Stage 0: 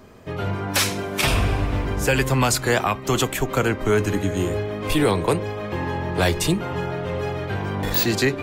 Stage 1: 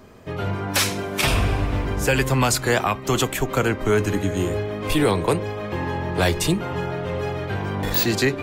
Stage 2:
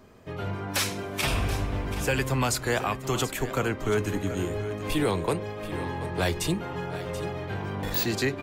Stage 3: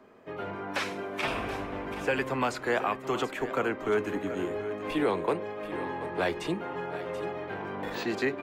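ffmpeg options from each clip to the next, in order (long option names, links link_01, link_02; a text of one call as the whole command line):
ffmpeg -i in.wav -af anull out.wav
ffmpeg -i in.wav -af "aecho=1:1:732:0.224,volume=-6.5dB" out.wav
ffmpeg -i in.wav -filter_complex "[0:a]acrossover=split=210 2800:gain=0.126 1 0.224[link_01][link_02][link_03];[link_01][link_02][link_03]amix=inputs=3:normalize=0,acrossover=split=7700[link_04][link_05];[link_05]acompressor=threshold=-57dB:ratio=4:attack=1:release=60[link_06];[link_04][link_06]amix=inputs=2:normalize=0" out.wav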